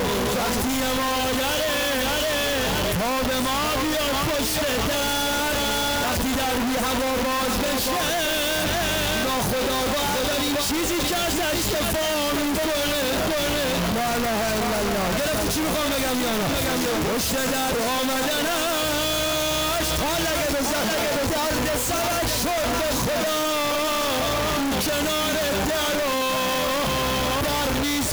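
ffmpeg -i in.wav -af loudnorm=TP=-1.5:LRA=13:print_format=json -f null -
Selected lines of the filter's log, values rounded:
"input_i" : "-22.4",
"input_tp" : "-17.2",
"input_lra" : "0.4",
"input_thresh" : "-32.4",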